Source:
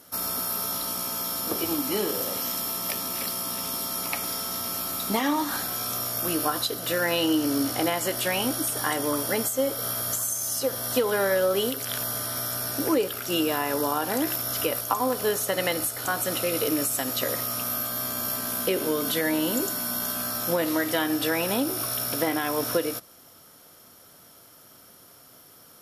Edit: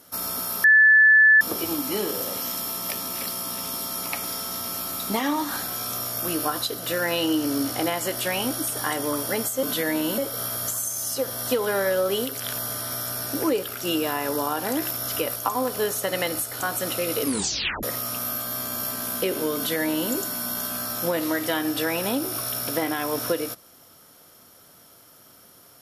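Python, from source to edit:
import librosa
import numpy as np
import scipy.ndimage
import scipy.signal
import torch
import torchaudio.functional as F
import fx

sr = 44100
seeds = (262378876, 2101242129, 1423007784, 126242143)

y = fx.edit(x, sr, fx.bleep(start_s=0.64, length_s=0.77, hz=1740.0, db=-11.0),
    fx.tape_stop(start_s=16.67, length_s=0.61),
    fx.duplicate(start_s=19.01, length_s=0.55, to_s=9.63), tone=tone)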